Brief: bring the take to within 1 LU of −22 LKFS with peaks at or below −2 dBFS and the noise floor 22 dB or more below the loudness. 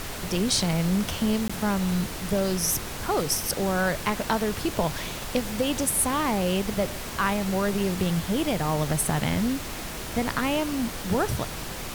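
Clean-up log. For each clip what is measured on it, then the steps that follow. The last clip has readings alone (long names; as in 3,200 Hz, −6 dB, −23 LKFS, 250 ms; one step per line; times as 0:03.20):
number of dropouts 1; longest dropout 15 ms; background noise floor −35 dBFS; target noise floor −48 dBFS; integrated loudness −26.0 LKFS; sample peak −10.5 dBFS; target loudness −22.0 LKFS
→ repair the gap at 0:01.48, 15 ms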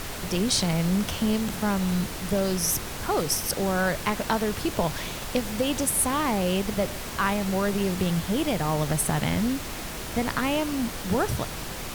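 number of dropouts 0; background noise floor −35 dBFS; target noise floor −48 dBFS
→ noise reduction from a noise print 13 dB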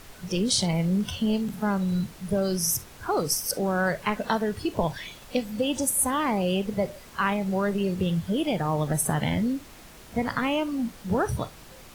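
background noise floor −48 dBFS; target noise floor −49 dBFS
→ noise reduction from a noise print 6 dB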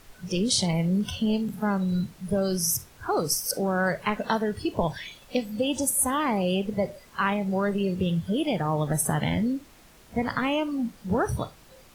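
background noise floor −53 dBFS; integrated loudness −26.5 LKFS; sample peak −11.0 dBFS; target loudness −22.0 LKFS
→ level +4.5 dB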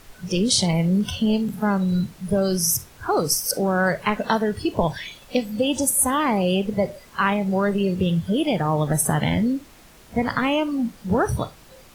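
integrated loudness −22.0 LKFS; sample peak −6.5 dBFS; background noise floor −49 dBFS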